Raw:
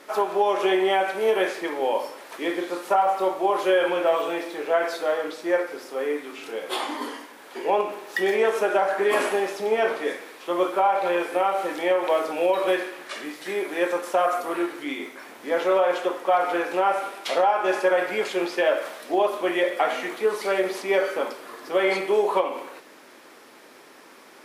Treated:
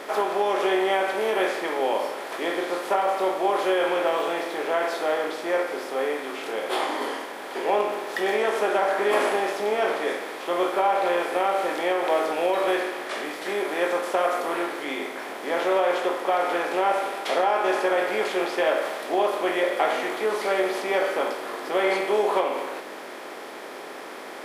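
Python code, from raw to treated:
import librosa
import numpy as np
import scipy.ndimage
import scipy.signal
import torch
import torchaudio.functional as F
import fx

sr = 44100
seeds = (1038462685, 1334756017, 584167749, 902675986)

y = fx.bin_compress(x, sr, power=0.6)
y = fx.doubler(y, sr, ms=19.0, db=-11)
y = F.gain(torch.from_numpy(y), -5.0).numpy()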